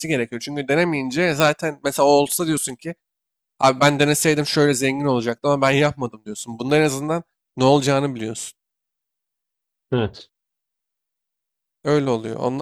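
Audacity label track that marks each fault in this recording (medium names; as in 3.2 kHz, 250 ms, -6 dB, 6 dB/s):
1.400000	1.400000	pop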